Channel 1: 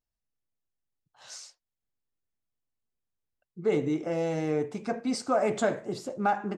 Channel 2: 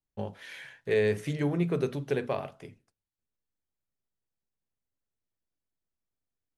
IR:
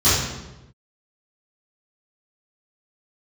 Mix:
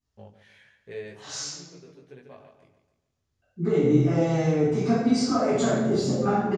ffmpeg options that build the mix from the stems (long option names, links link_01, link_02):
-filter_complex "[0:a]acompressor=threshold=-31dB:ratio=10,volume=-4dB,asplit=3[link_01][link_02][link_03];[link_02]volume=-6.5dB[link_04];[1:a]flanger=delay=15.5:depth=6.8:speed=0.91,volume=-9dB,asplit=2[link_05][link_06];[link_06]volume=-12.5dB[link_07];[link_03]apad=whole_len=289813[link_08];[link_05][link_08]sidechaincompress=threshold=-59dB:ratio=4:attack=16:release=1470[link_09];[2:a]atrim=start_sample=2205[link_10];[link_04][link_10]afir=irnorm=-1:irlink=0[link_11];[link_07]aecho=0:1:144|288|432|576|720|864:1|0.4|0.16|0.064|0.0256|0.0102[link_12];[link_01][link_09][link_11][link_12]amix=inputs=4:normalize=0,lowpass=8300"